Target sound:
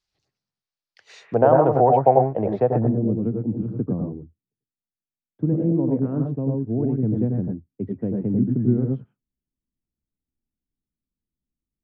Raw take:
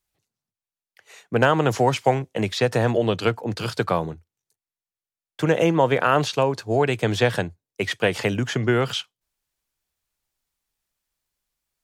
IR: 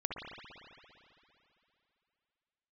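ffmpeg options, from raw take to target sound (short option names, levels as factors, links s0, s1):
-filter_complex "[0:a]asetnsamples=n=441:p=0,asendcmd='1.34 lowpass f 710;2.76 lowpass f 250',lowpass=f=4900:t=q:w=2.6[s0];[1:a]atrim=start_sample=2205,atrim=end_sample=3528,asetrate=27783,aresample=44100[s1];[s0][s1]afir=irnorm=-1:irlink=0,volume=0.668"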